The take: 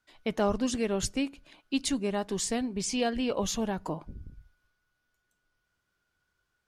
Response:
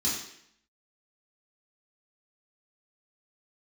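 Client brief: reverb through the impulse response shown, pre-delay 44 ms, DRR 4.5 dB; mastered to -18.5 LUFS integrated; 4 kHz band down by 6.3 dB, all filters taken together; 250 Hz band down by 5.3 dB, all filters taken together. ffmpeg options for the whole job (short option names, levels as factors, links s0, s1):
-filter_complex "[0:a]equalizer=f=250:t=o:g=-6,equalizer=f=4000:t=o:g=-9,asplit=2[s0][s1];[1:a]atrim=start_sample=2205,adelay=44[s2];[s1][s2]afir=irnorm=-1:irlink=0,volume=0.266[s3];[s0][s3]amix=inputs=2:normalize=0,volume=4.47"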